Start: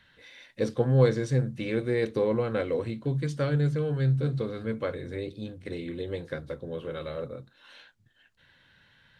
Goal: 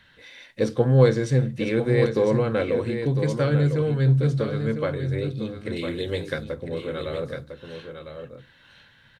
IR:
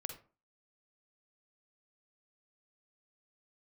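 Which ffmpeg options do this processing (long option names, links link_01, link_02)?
-filter_complex "[0:a]asettb=1/sr,asplit=3[link_01][link_02][link_03];[link_01]atrim=end=5.764[link_04];[link_02]atrim=start=5.76:end=6.44,asetpts=PTS-STARTPTS,afade=type=in:duration=0.004:curve=qsin,afade=type=out:start_time=0.676:duration=0.004:curve=qsin,highshelf=frequency=2200:gain=10.5[link_05];[link_03]atrim=start=6.436[link_06];[link_04][link_05]acrossfade=duration=0.004:curve1=hsin:curve2=qsin[link_07];[link_07][link_06]acrossfade=duration=0.004:curve1=qsin:curve2=hsin,aecho=1:1:1003:0.398,asplit=2[link_08][link_09];[1:a]atrim=start_sample=2205[link_10];[link_09][link_10]afir=irnorm=-1:irlink=0,volume=-13.5dB[link_11];[link_08][link_11]amix=inputs=2:normalize=0,volume=3.5dB"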